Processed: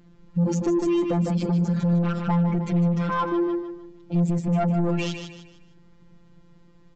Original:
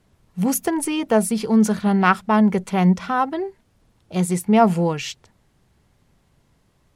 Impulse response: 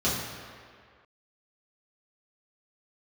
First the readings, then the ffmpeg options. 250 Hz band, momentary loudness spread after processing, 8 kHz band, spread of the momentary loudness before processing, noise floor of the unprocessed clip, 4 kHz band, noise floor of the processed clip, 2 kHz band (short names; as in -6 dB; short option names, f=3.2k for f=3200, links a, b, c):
-4.0 dB, 8 LU, under -10 dB, 12 LU, -63 dBFS, -6.5 dB, -53 dBFS, -10.5 dB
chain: -af "equalizer=f=250:t=o:w=0.67:g=6,equalizer=f=630:t=o:w=0.67:g=-6,equalizer=f=6.3k:t=o:w=0.67:g=-4,acompressor=threshold=-17dB:ratio=4,afftfilt=real='hypot(re,im)*cos(PI*b)':imag='0':win_size=1024:overlap=0.75,aresample=16000,asoftclip=type=tanh:threshold=-24.5dB,aresample=44100,tiltshelf=f=830:g=4.5,aecho=1:1:153|306|459|612:0.447|0.161|0.0579|0.0208,alimiter=limit=-24dB:level=0:latency=1:release=54,volume=7dB"